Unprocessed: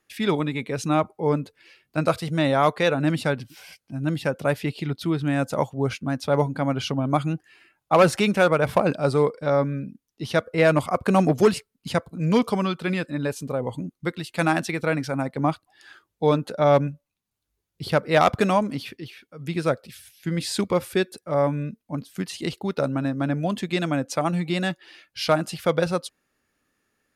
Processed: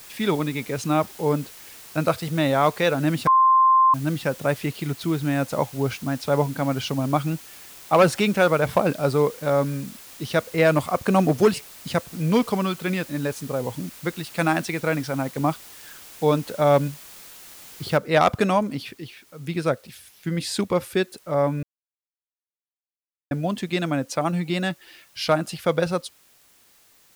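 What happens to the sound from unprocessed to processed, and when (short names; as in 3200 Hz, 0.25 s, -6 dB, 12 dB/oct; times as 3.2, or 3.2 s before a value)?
3.27–3.94 bleep 1050 Hz -12.5 dBFS
17.97 noise floor step -44 dB -57 dB
21.63–23.31 mute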